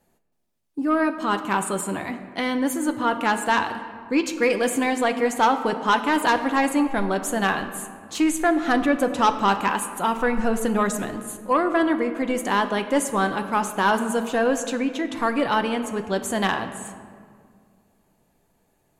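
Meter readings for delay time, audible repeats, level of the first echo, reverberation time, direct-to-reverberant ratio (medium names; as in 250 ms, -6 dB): no echo, no echo, no echo, 2.0 s, 7.0 dB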